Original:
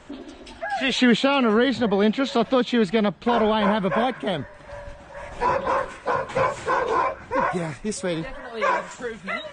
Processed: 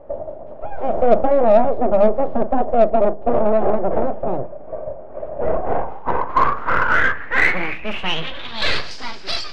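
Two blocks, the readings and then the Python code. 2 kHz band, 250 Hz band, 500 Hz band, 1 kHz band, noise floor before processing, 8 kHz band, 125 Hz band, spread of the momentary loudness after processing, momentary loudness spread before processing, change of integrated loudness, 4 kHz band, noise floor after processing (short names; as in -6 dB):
+6.0 dB, -3.0 dB, +5.5 dB, +3.5 dB, -44 dBFS, n/a, 0.0 dB, 15 LU, 19 LU, +3.5 dB, +1.5 dB, -33 dBFS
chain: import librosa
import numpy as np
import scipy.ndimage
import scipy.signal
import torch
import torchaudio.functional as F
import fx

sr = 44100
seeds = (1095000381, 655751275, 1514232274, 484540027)

p1 = np.abs(x)
p2 = p1 + fx.echo_filtered(p1, sr, ms=60, feedback_pct=74, hz=1300.0, wet_db=-23, dry=0)
p3 = fx.filter_sweep_lowpass(p2, sr, from_hz=620.0, to_hz=4900.0, start_s=5.47, end_s=8.93, q=6.6)
p4 = fx.hum_notches(p3, sr, base_hz=50, count=4)
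p5 = fx.doubler(p4, sr, ms=38.0, db=-13.5)
p6 = 10.0 ** (-19.0 / 20.0) * np.tanh(p5 / 10.0 ** (-19.0 / 20.0))
p7 = p5 + F.gain(torch.from_numpy(p6), -3.0).numpy()
y = fx.high_shelf(p7, sr, hz=7300.0, db=-5.0)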